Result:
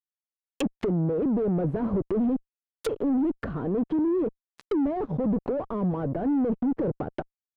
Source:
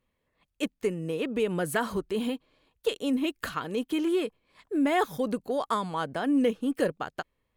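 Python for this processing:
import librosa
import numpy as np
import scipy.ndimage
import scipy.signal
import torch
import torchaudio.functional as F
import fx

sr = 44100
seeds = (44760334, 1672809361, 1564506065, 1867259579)

y = fx.fuzz(x, sr, gain_db=41.0, gate_db=-47.0)
y = fx.env_lowpass_down(y, sr, base_hz=470.0, full_db=-15.5)
y = y * 10.0 ** (-8.0 / 20.0)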